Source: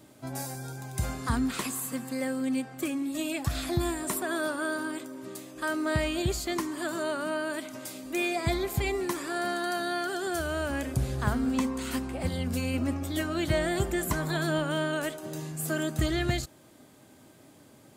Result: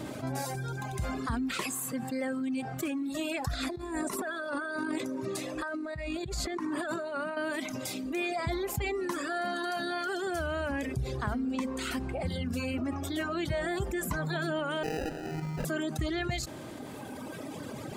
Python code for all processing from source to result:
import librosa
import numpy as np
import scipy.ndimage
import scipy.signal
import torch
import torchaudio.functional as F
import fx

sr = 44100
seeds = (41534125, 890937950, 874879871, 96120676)

y = fx.chain(x, sr, fx.lowpass(hz=12000.0, slope=12),
    fx.notch(hz=3100.0, q=12.0),
    fx.over_compress(threshold_db=-35.0, ratio=-0.5), at=(3.53, 7.37))
y = fx.chain(y, sr, fx.notch_comb(f0_hz=650.0),
    fx.sample_hold(seeds[0], rate_hz=1100.0, jitter_pct=0),
    fx.notch(hz=3600.0, q=8.3), at=(14.83, 15.65))
y = fx.lowpass(y, sr, hz=3500.0, slope=6)
y = fx.dereverb_blind(y, sr, rt60_s=2.0)
y = fx.env_flatten(y, sr, amount_pct=70)
y = y * 10.0 ** (-6.0 / 20.0)